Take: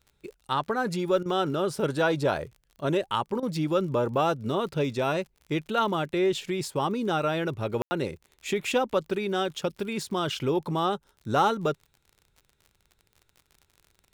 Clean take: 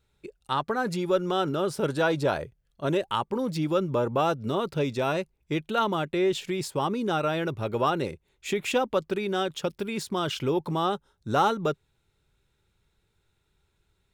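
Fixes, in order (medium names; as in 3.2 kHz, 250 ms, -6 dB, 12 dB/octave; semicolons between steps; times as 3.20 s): de-click; room tone fill 7.82–7.91 s; interpolate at 1.23/3.40 s, 25 ms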